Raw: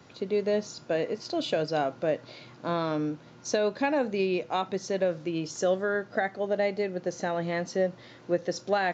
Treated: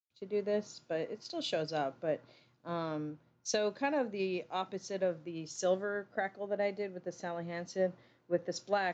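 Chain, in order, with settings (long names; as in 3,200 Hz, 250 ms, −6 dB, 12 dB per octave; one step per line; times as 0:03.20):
noise gate with hold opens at −43 dBFS
multiband upward and downward expander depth 100%
level −7 dB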